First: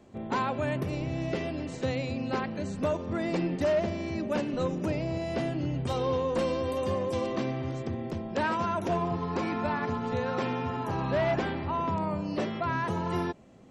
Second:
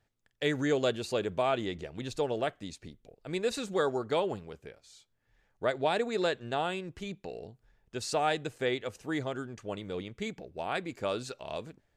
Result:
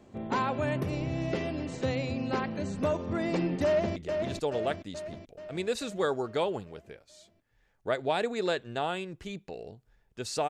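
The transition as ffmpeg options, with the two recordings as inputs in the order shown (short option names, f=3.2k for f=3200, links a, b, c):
-filter_complex "[0:a]apad=whole_dur=10.49,atrim=end=10.49,atrim=end=3.962[a];[1:a]atrim=start=1.718:end=8.25[b];[a][b]acrossfade=d=0.004:c1=hsin:c2=hsin,asplit=2[c][d];[d]afade=t=in:st=3.65:d=0.01,afade=t=out:st=3.96:d=0.01,aecho=0:1:430|860|1290|1720|2150|2580|3010|3440:0.530884|0.318531|0.191118|0.114671|0.0688026|0.0412816|0.0247689|0.0148614[e];[c][e]amix=inputs=2:normalize=0"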